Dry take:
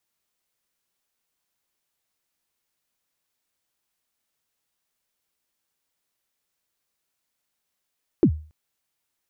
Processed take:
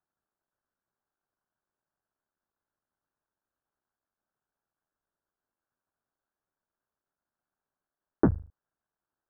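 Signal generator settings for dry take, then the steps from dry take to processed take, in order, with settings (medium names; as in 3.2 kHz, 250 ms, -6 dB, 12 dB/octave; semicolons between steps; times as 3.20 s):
kick drum length 0.28 s, from 400 Hz, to 77 Hz, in 77 ms, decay 0.38 s, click off, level -9 dB
cycle switcher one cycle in 3, muted; elliptic low-pass 1.6 kHz, stop band 40 dB; band-stop 490 Hz, Q 12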